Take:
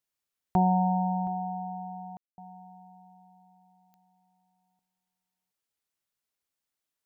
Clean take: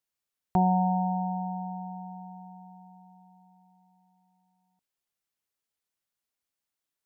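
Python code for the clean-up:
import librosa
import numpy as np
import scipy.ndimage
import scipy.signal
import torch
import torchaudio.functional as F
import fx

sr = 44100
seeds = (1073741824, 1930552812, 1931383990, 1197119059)

y = fx.fix_declick_ar(x, sr, threshold=10.0)
y = fx.fix_ambience(y, sr, seeds[0], print_start_s=6.49, print_end_s=6.99, start_s=2.17, end_s=2.38)
y = fx.fix_echo_inverse(y, sr, delay_ms=720, level_db=-20.0)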